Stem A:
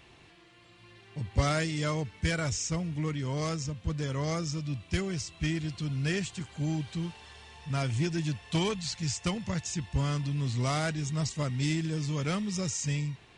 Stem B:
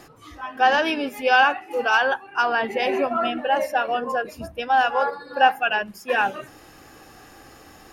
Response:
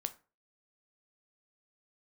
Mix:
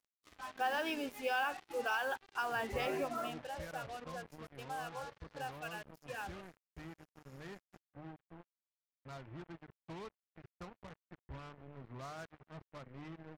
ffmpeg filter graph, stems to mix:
-filter_complex "[0:a]lowpass=f=1.6k:w=0.5412,lowpass=f=1.6k:w=1.3066,equalizer=f=150:w=0.48:g=-7.5,bandreject=f=50:t=h:w=6,bandreject=f=100:t=h:w=6,bandreject=f=150:t=h:w=6,adelay=1350,volume=-13.5dB,asplit=2[a][b];[b]volume=-22.5dB[c];[1:a]alimiter=limit=-12dB:level=0:latency=1:release=271,volume=-13.5dB,afade=t=out:st=2.9:d=0.59:silence=0.375837[d];[c]aecho=0:1:293:1[e];[a][d][e]amix=inputs=3:normalize=0,acrusher=bits=7:mix=0:aa=0.5"

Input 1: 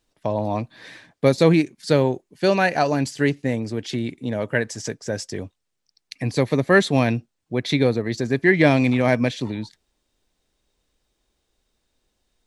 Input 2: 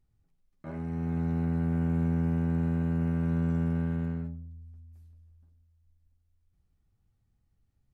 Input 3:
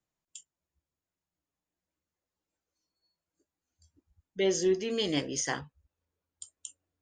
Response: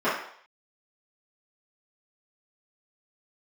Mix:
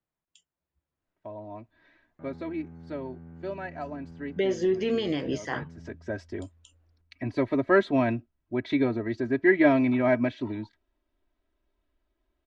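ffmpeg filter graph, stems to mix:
-filter_complex "[0:a]aecho=1:1:3.1:0.88,adelay=1000,volume=-7dB,afade=t=in:st=5.73:d=0.32:silence=0.237137[a];[1:a]alimiter=level_in=7.5dB:limit=-24dB:level=0:latency=1,volume=-7.5dB,adelay=1550,volume=-18dB[b];[2:a]highshelf=f=5.3k:g=11,volume=-1dB[c];[b][c]amix=inputs=2:normalize=0,dynaudnorm=f=190:g=11:m=10dB,alimiter=limit=-16.5dB:level=0:latency=1:release=124,volume=0dB[d];[a][d]amix=inputs=2:normalize=0,firequalizer=gain_entry='entry(1500,0);entry(5200,-17);entry(8200,-27)':delay=0.05:min_phase=1"

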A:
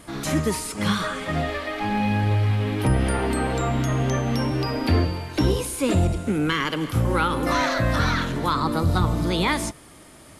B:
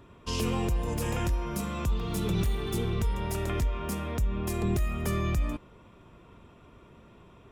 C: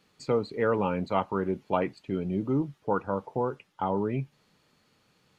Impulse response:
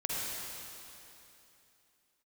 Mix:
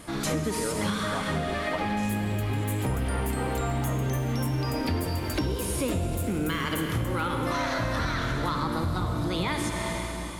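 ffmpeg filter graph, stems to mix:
-filter_complex "[0:a]acontrast=72,volume=-9.5dB,asplit=2[a][b];[b]volume=-5dB[c];[1:a]aexciter=amount=7.1:drive=5.7:freq=6.8k,adelay=1700,volume=-9.5dB,asplit=2[d][e];[e]volume=-18dB[f];[2:a]volume=-4dB[g];[3:a]atrim=start_sample=2205[h];[c][f]amix=inputs=2:normalize=0[i];[i][h]afir=irnorm=-1:irlink=0[j];[a][d][g][j]amix=inputs=4:normalize=0,acompressor=threshold=-25dB:ratio=6"

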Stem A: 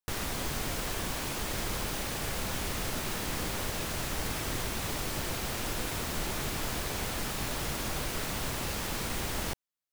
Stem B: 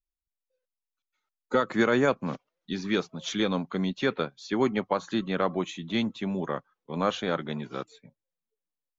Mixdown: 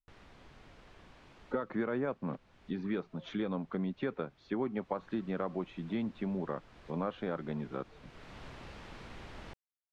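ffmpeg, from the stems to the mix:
-filter_complex "[0:a]volume=-13dB,afade=t=in:st=4.68:d=0.43:silence=0.375837[a];[1:a]lowpass=f=1.2k:p=1,acompressor=threshold=-31dB:ratio=3,volume=-1.5dB,asplit=2[b][c];[c]apad=whole_len=437685[d];[a][d]sidechaincompress=threshold=-45dB:ratio=4:attack=5.4:release=575[e];[e][b]amix=inputs=2:normalize=0,lowpass=3.2k"

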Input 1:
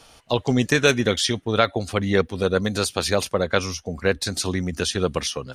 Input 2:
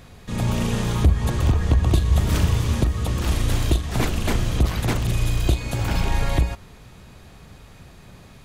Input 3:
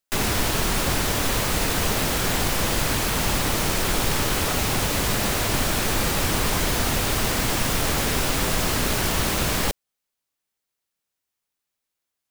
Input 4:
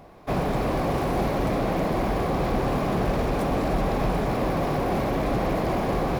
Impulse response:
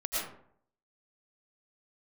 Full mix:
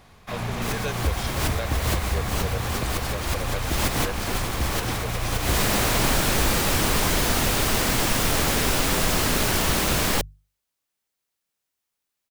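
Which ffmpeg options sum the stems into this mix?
-filter_complex "[0:a]aecho=1:1:1.9:0.77,volume=-17.5dB,asplit=2[a][b];[1:a]volume=-8dB[c];[2:a]adelay=500,volume=1dB[d];[3:a]highpass=1.3k,volume=1.5dB[e];[b]apad=whole_len=564492[f];[d][f]sidechaincompress=threshold=-46dB:ratio=8:attack=8.8:release=170[g];[a][c][g][e]amix=inputs=4:normalize=0,bandreject=f=50:t=h:w=6,bandreject=f=100:t=h:w=6,bandreject=f=150:t=h:w=6"

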